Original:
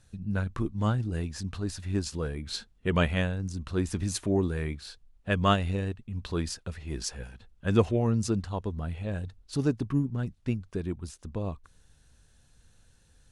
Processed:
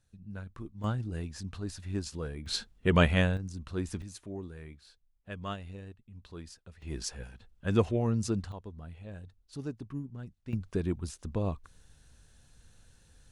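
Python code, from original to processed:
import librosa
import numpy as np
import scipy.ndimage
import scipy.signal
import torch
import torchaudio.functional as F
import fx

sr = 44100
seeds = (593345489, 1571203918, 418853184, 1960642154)

y = fx.gain(x, sr, db=fx.steps((0.0, -12.5), (0.84, -5.0), (2.46, 2.0), (3.37, -5.5), (4.02, -14.5), (6.82, -3.0), (8.52, -11.5), (10.53, 1.5)))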